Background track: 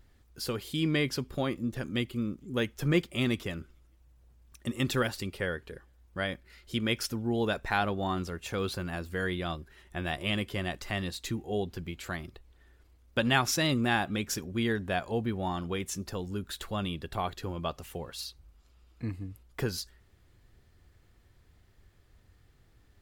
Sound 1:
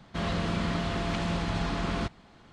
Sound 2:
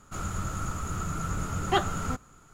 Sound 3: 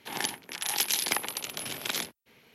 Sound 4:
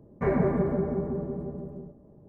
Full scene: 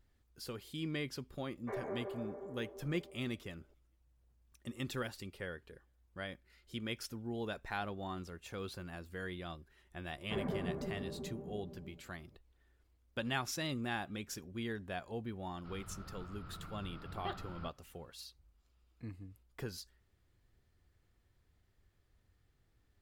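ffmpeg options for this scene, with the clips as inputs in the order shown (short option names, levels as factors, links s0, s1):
-filter_complex "[4:a]asplit=2[s0][s1];[0:a]volume=0.282[s2];[s0]highpass=f=390:w=0.5412,highpass=f=390:w=1.3066[s3];[2:a]aresample=11025,aresample=44100[s4];[s3]atrim=end=2.28,asetpts=PTS-STARTPTS,volume=0.224,afade=t=in:d=0.004:c=hsin,afade=t=out:st=2.276:d=0.004:c=hsin,adelay=1460[s5];[s1]atrim=end=2.28,asetpts=PTS-STARTPTS,volume=0.2,afade=t=in:d=0.004:c=hsin,afade=t=out:st=2.276:d=0.004:c=hsin,adelay=10090[s6];[s4]atrim=end=2.53,asetpts=PTS-STARTPTS,volume=0.141,afade=t=in:d=0.004:c=hsin,afade=t=out:st=2.526:d=0.004:c=hsin,adelay=15530[s7];[s2][s5][s6][s7]amix=inputs=4:normalize=0"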